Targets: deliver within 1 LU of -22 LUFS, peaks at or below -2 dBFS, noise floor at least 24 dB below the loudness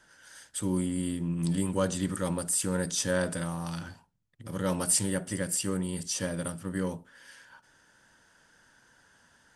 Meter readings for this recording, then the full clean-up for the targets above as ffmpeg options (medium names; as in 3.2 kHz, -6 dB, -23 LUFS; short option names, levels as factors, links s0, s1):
loudness -30.5 LUFS; peak level -12.0 dBFS; loudness target -22.0 LUFS
-> -af "volume=2.66"